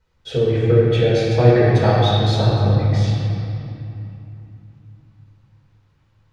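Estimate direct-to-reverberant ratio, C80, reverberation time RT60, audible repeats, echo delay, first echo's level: -7.5 dB, -1.0 dB, 2.9 s, none, none, none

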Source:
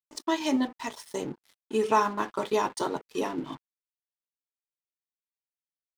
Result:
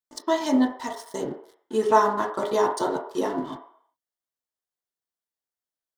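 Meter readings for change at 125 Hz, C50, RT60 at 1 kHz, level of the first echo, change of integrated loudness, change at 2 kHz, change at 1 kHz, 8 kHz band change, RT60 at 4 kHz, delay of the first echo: +1.5 dB, 8.0 dB, 0.65 s, none, +4.5 dB, +2.0 dB, +4.5 dB, +1.5 dB, 0.60 s, none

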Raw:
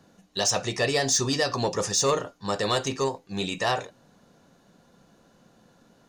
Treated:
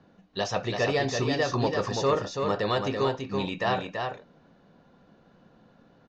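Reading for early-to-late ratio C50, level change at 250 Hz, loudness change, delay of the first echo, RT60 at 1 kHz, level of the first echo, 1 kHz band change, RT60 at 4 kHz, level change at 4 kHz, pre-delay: none, +1.0 dB, -2.0 dB, 0.333 s, none, -5.0 dB, 0.0 dB, none, -6.0 dB, none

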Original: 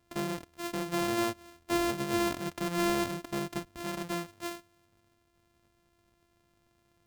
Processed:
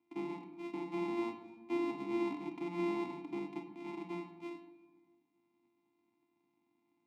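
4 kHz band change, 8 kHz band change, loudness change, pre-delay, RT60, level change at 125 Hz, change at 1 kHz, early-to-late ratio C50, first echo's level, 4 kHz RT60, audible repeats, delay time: -17.0 dB, under -25 dB, -7.0 dB, 20 ms, 1.4 s, -12.0 dB, -9.5 dB, 8.0 dB, none, 0.65 s, none, none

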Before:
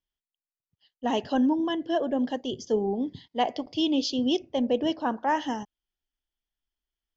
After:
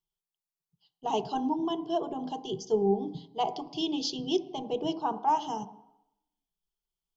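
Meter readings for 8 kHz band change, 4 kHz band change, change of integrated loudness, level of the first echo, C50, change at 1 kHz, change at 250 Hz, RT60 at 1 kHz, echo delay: n/a, -3.5 dB, -3.5 dB, none, 16.0 dB, 0.0 dB, -6.5 dB, 0.90 s, none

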